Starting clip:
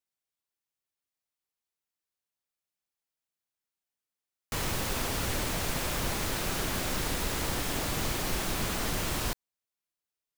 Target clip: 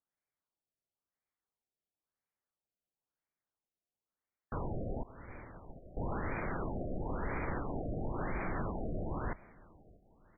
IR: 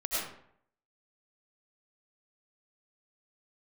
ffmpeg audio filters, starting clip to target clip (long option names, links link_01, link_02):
-filter_complex "[0:a]asettb=1/sr,asplit=3[link_01][link_02][link_03];[link_01]atrim=end=5.034[link_04];[link_02]atrim=start=5.03:end=5.97,asetpts=PTS-STARTPTS,afade=type=in:duration=0.004:curve=qsin,afade=type=out:start_time=0.936:duration=0.004:curve=qsin,agate=range=-33dB:threshold=-18dB:ratio=3:detection=peak[link_05];[link_03]atrim=start=5.966[link_06];[link_04][link_05]acrossfade=duration=0.004:curve1=hsin:curve2=qsin[link_07];[link_07][link_06]acrossfade=duration=0.004:curve1=qsin:curve2=hsin,alimiter=level_in=2dB:limit=-24dB:level=0:latency=1:release=58,volume=-2dB,aecho=1:1:636|1272|1908:0.0708|0.0347|0.017,asplit=2[link_08][link_09];[1:a]atrim=start_sample=2205[link_10];[link_09][link_10]afir=irnorm=-1:irlink=0,volume=-28.5dB[link_11];[link_08][link_11]amix=inputs=2:normalize=0,afftfilt=real='re*lt(b*sr/1024,720*pow(2500/720,0.5+0.5*sin(2*PI*0.98*pts/sr)))':imag='im*lt(b*sr/1024,720*pow(2500/720,0.5+0.5*sin(2*PI*0.98*pts/sr)))':win_size=1024:overlap=0.75,volume=1dB"